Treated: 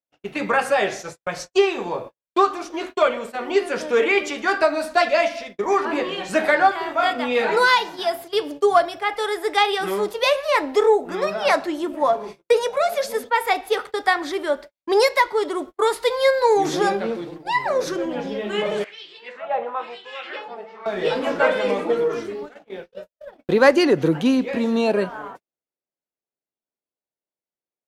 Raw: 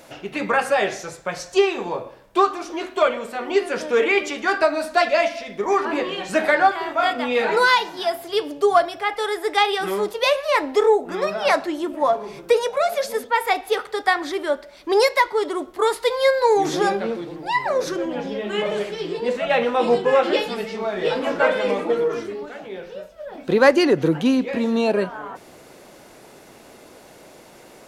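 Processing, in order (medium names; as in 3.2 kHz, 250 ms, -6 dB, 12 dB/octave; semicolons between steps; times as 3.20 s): gate -33 dBFS, range -53 dB; 18.84–20.86 s: LFO band-pass sine 1 Hz 740–3600 Hz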